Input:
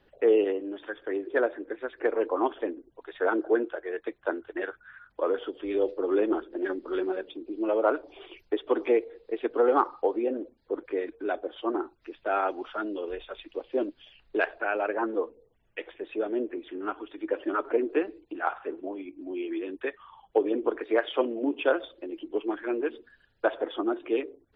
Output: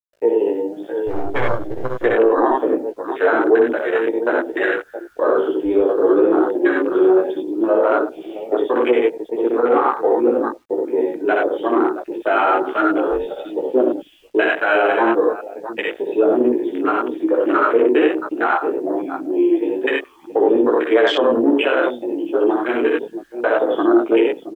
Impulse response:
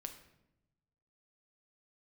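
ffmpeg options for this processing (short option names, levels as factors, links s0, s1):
-filter_complex "[0:a]asettb=1/sr,asplit=3[s0][s1][s2];[s0]atrim=end=1.074[s3];[s1]atrim=start=1.07:end=1.98,asetpts=PTS-STARTPTS,afade=t=in:d=0.004:c=qsin,afade=t=out:st=0.906:d=0.004:c=qsin,aeval=exprs='max(val(0),0)':c=same[s4];[s2]atrim=start=1.976[s5];[s3][s4]acrossfade=d=0.004:c1=hsin:c2=qsin[s6];[s6][s5]acrossfade=d=0.004:c1=qsin:c2=hsin,highshelf=f=2200:g=7.5,aecho=1:1:62|91|177|671:0.668|0.631|0.119|0.251,dynaudnorm=f=640:g=3:m=2.51,acrusher=bits=7:mix=0:aa=0.000001,alimiter=limit=0.266:level=0:latency=1:release=34,flanger=delay=15.5:depth=2:speed=1.1,afwtdn=0.0282,volume=2.51"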